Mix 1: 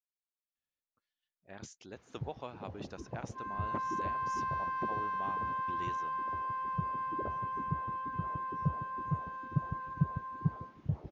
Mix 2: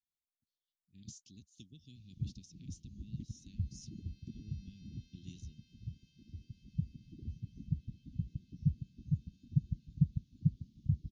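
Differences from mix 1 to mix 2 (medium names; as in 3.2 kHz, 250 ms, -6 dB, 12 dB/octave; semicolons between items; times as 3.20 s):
speech: entry -0.55 s; first sound: remove high-pass 100 Hz 6 dB/octave; master: add inverse Chebyshev band-stop 620–1400 Hz, stop band 70 dB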